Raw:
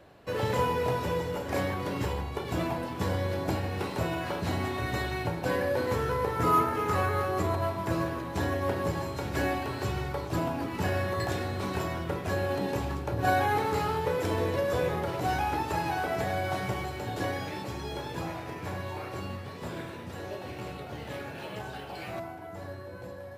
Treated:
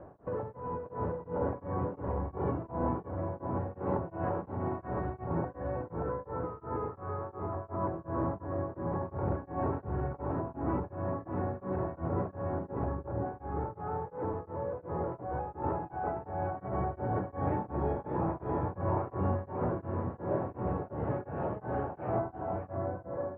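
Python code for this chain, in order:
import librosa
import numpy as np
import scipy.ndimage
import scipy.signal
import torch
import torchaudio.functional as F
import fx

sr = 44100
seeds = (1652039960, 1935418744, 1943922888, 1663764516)

y = 10.0 ** (-23.5 / 20.0) * np.tanh(x / 10.0 ** (-23.5 / 20.0))
y = fx.over_compress(y, sr, threshold_db=-36.0, ratio=-1.0)
y = scipy.signal.sosfilt(scipy.signal.butter(4, 1200.0, 'lowpass', fs=sr, output='sos'), y)
y = y + 10.0 ** (-4.0 / 20.0) * np.pad(y, (int(580 * sr / 1000.0), 0))[:len(y)]
y = y * np.abs(np.cos(np.pi * 2.8 * np.arange(len(y)) / sr))
y = y * librosa.db_to_amplitude(3.5)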